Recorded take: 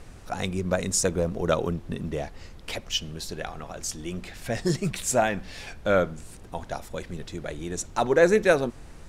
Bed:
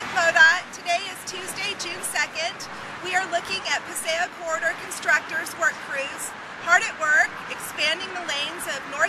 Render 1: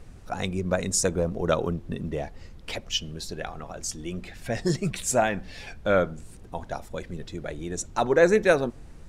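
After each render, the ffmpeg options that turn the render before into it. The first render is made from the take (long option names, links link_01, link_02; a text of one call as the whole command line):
ffmpeg -i in.wav -af "afftdn=noise_reduction=6:noise_floor=-45" out.wav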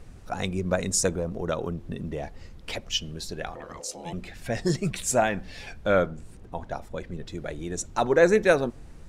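ffmpeg -i in.wav -filter_complex "[0:a]asettb=1/sr,asplit=3[link_01][link_02][link_03];[link_01]atrim=end=1.134[link_04];[link_02]atrim=start=1.13:end=2.23,asetpts=PTS-STARTPTS,afade=type=in:duration=0.004:curve=qsin,afade=type=out:start_time=1.096:duration=0.004:curve=qsin,acompressor=threshold=-31dB:ratio=1.5:attack=3.2:release=140:knee=1:detection=peak[link_05];[link_03]atrim=start=2.226[link_06];[link_04][link_05]acrossfade=duration=0.004:curve1=hsin:curve2=qsin[link_07];[link_07][link_06]acrossfade=duration=0.004:curve1=qsin:curve2=hsin,asettb=1/sr,asplit=3[link_08][link_09][link_10];[link_08]atrim=end=3.554[link_11];[link_09]atrim=start=3.55:end=4.13,asetpts=PTS-STARTPTS,afade=type=in:duration=0.004:curve=qsin,afade=type=out:start_time=0.576:duration=0.004:curve=qsin,aeval=exprs='val(0)*sin(2*PI*510*n/s)':channel_layout=same[link_12];[link_10]atrim=start=4.126[link_13];[link_11][link_12]acrossfade=duration=0.004:curve1=hsin:curve2=qsin[link_14];[link_14][link_13]acrossfade=duration=0.004:curve1=qsin:curve2=hsin,asettb=1/sr,asplit=3[link_15][link_16][link_17];[link_15]atrim=end=6.064[link_18];[link_16]atrim=start=6.06:end=7.27,asetpts=PTS-STARTPTS,afade=type=in:duration=0.004:curve=qsin,afade=type=out:start_time=1.206:duration=0.004:curve=qsin,highshelf=frequency=3900:gain=-7.5[link_19];[link_17]atrim=start=7.266[link_20];[link_18][link_19]acrossfade=duration=0.004:curve1=hsin:curve2=qsin[link_21];[link_21][link_20]acrossfade=duration=0.004:curve1=qsin:curve2=hsin" out.wav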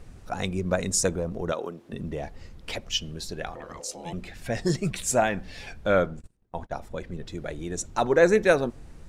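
ffmpeg -i in.wav -filter_complex "[0:a]asettb=1/sr,asplit=3[link_01][link_02][link_03];[link_01]atrim=end=1.524[link_04];[link_02]atrim=start=1.52:end=1.93,asetpts=PTS-STARTPTS,afade=type=in:duration=0.004:curve=qsin,afade=type=out:start_time=0.406:duration=0.004:curve=qsin,highpass=310[link_05];[link_03]atrim=start=1.926[link_06];[link_04][link_05]acrossfade=duration=0.004:curve1=hsin:curve2=qsin[link_07];[link_07][link_06]acrossfade=duration=0.004:curve1=qsin:curve2=hsin,asplit=3[link_08][link_09][link_10];[link_08]afade=type=out:start_time=6.19:duration=0.02[link_11];[link_09]agate=range=-27dB:threshold=-40dB:ratio=16:release=100:detection=peak,afade=type=in:start_time=6.19:duration=0.02,afade=type=out:start_time=6.81:duration=0.02[link_12];[link_10]afade=type=in:start_time=6.81:duration=0.02[link_13];[link_11][link_12][link_13]amix=inputs=3:normalize=0" out.wav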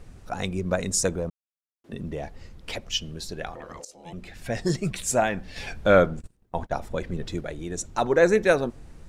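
ffmpeg -i in.wav -filter_complex "[0:a]asettb=1/sr,asplit=3[link_01][link_02][link_03];[link_01]atrim=end=5.564[link_04];[link_02]atrim=start=5.56:end=7.41,asetpts=PTS-STARTPTS,afade=type=in:duration=0.004:curve=qsin,afade=type=out:start_time=1.846:duration=0.004:curve=qsin,acontrast=27[link_05];[link_03]atrim=start=7.406[link_06];[link_04][link_05]acrossfade=duration=0.004:curve1=hsin:curve2=qsin[link_07];[link_07][link_06]acrossfade=duration=0.004:curve1=qsin:curve2=hsin,asplit=4[link_08][link_09][link_10][link_11];[link_08]atrim=end=1.3,asetpts=PTS-STARTPTS,afade=type=out:start_time=1.296:duration=0.004:curve=hsin[link_12];[link_09]atrim=start=1.3:end=1.84,asetpts=PTS-STARTPTS,volume=0[link_13];[link_10]atrim=start=1.84:end=3.85,asetpts=PTS-STARTPTS,afade=type=in:duration=0.004:curve=hsin,afade=type=out:start_time=2.006:duration=0.004:curve=hsin:silence=0.16788[link_14];[link_11]atrim=start=3.85,asetpts=PTS-STARTPTS,afade=type=in:duration=0.55:silence=0.16788[link_15];[link_12][link_13][link_14][link_15]concat=n=4:v=0:a=1" out.wav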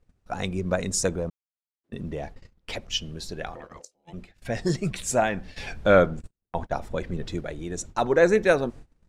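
ffmpeg -i in.wav -af "agate=range=-23dB:threshold=-39dB:ratio=16:detection=peak,highshelf=frequency=9300:gain=-6" out.wav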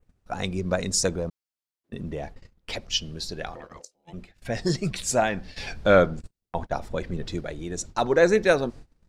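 ffmpeg -i in.wav -af "adynamicequalizer=threshold=0.00316:dfrequency=4700:dqfactor=2:tfrequency=4700:tqfactor=2:attack=5:release=100:ratio=0.375:range=3.5:mode=boostabove:tftype=bell" out.wav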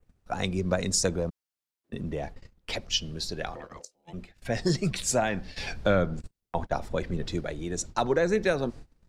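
ffmpeg -i in.wav -filter_complex "[0:a]acrossover=split=200[link_01][link_02];[link_02]acompressor=threshold=-21dB:ratio=10[link_03];[link_01][link_03]amix=inputs=2:normalize=0" out.wav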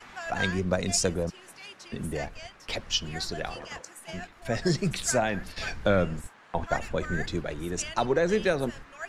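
ffmpeg -i in.wav -i bed.wav -filter_complex "[1:a]volume=-17.5dB[link_01];[0:a][link_01]amix=inputs=2:normalize=0" out.wav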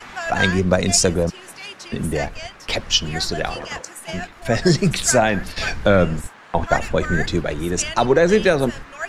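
ffmpeg -i in.wav -af "volume=10dB,alimiter=limit=-3dB:level=0:latency=1" out.wav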